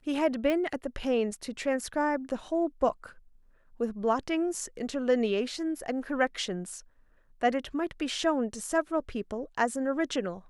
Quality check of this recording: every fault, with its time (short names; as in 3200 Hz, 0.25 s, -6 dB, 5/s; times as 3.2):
0.5 pop -18 dBFS